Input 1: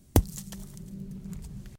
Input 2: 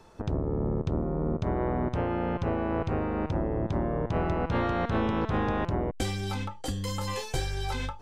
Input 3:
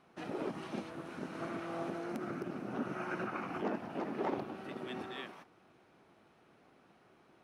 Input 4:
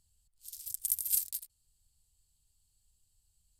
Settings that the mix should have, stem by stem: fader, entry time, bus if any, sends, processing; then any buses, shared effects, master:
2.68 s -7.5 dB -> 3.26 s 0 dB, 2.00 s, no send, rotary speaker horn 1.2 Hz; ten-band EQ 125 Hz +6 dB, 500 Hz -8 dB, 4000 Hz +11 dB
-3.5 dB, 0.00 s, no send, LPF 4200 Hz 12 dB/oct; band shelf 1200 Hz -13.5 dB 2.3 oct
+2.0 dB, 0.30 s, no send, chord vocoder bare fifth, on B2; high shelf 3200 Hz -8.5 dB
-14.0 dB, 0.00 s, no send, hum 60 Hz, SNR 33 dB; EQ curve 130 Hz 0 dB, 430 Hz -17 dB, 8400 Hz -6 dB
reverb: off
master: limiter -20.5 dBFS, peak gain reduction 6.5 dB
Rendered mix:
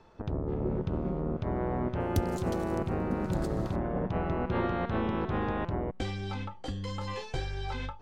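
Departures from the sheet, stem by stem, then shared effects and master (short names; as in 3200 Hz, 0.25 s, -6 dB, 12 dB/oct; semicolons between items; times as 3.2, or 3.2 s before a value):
stem 2: missing band shelf 1200 Hz -13.5 dB 2.3 oct; stem 4: muted; master: missing limiter -20.5 dBFS, peak gain reduction 6.5 dB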